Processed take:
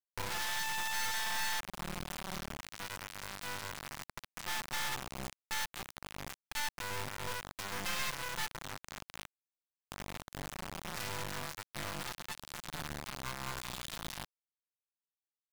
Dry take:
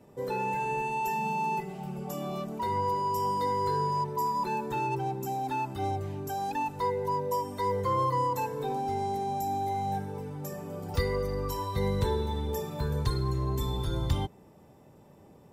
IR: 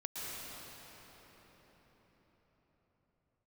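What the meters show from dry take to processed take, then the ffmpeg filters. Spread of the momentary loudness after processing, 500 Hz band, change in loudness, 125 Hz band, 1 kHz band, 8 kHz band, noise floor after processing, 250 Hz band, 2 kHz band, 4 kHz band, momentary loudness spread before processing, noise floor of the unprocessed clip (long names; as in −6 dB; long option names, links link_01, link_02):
11 LU, −17.0 dB, −8.5 dB, −16.0 dB, −14.0 dB, +6.5 dB, below −85 dBFS, −13.5 dB, +3.0 dB, +4.0 dB, 7 LU, −55 dBFS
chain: -filter_complex "[0:a]acrossover=split=1000[link_01][link_02];[link_01]volume=29dB,asoftclip=hard,volume=-29dB[link_03];[link_03][link_02]amix=inputs=2:normalize=0,acompressor=threshold=-38dB:ratio=4,highpass=130,lowpass=5300,bandreject=frequency=4200:width=14,aecho=1:1:5.7:0.88,aeval=exprs='(mod(28.2*val(0)+1,2)-1)/28.2':channel_layout=same,asplit=2[link_04][link_05];[link_05]adelay=85,lowpass=frequency=4200:poles=1,volume=-21dB,asplit=2[link_06][link_07];[link_07]adelay=85,lowpass=frequency=4200:poles=1,volume=0.48,asplit=2[link_08][link_09];[link_09]adelay=85,lowpass=frequency=4200:poles=1,volume=0.48[link_10];[link_04][link_06][link_08][link_10]amix=inputs=4:normalize=0,acrusher=bits=3:dc=4:mix=0:aa=0.000001,acompressor=mode=upward:threshold=-39dB:ratio=2.5,equalizer=frequency=420:width_type=o:width=1.4:gain=-8.5,volume=1dB"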